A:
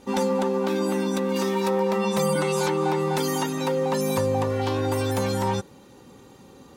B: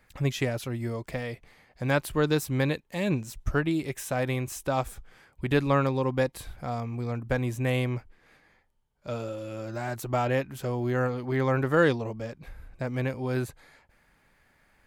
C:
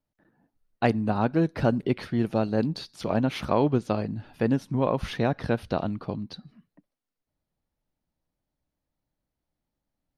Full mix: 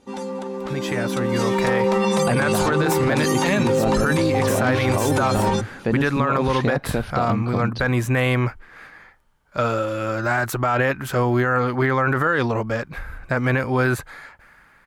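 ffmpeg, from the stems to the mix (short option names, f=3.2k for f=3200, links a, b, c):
-filter_complex "[0:a]volume=-5.5dB[a];[1:a]alimiter=limit=-19.5dB:level=0:latency=1,equalizer=f=1.4k:w=1.2:g=11.5,adelay=500,volume=-3dB[b];[2:a]adelay=1450,volume=-5dB[c];[a][c]amix=inputs=2:normalize=0,lowpass=f=11k:w=0.5412,lowpass=f=11k:w=1.3066,alimiter=limit=-22dB:level=0:latency=1:release=24,volume=0dB[d];[b][d]amix=inputs=2:normalize=0,dynaudnorm=f=380:g=7:m=14dB,alimiter=limit=-11dB:level=0:latency=1:release=20"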